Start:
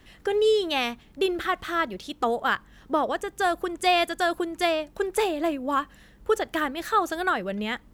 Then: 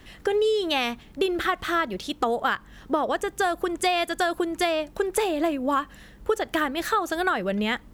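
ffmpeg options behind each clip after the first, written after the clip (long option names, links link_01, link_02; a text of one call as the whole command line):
ffmpeg -i in.wav -af "acompressor=threshold=-25dB:ratio=6,volume=5dB" out.wav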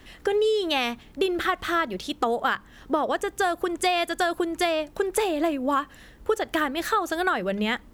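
ffmpeg -i in.wav -af "bandreject=frequency=50:width_type=h:width=6,bandreject=frequency=100:width_type=h:width=6,bandreject=frequency=150:width_type=h:width=6,bandreject=frequency=200:width_type=h:width=6" out.wav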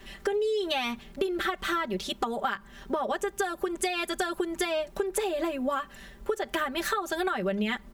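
ffmpeg -i in.wav -af "aecho=1:1:5.1:0.96,acompressor=threshold=-24dB:ratio=6,volume=-1.5dB" out.wav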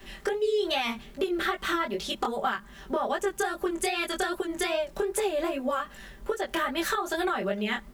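ffmpeg -i in.wav -filter_complex "[0:a]acrossover=split=260|4300[link_01][link_02][link_03];[link_01]alimiter=level_in=13dB:limit=-24dB:level=0:latency=1,volume=-13dB[link_04];[link_04][link_02][link_03]amix=inputs=3:normalize=0,acrusher=bits=10:mix=0:aa=0.000001,flanger=delay=18:depth=6.2:speed=2.5,volume=4dB" out.wav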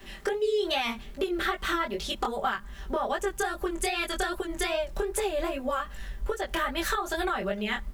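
ffmpeg -i in.wav -af "asubboost=boost=5:cutoff=100" out.wav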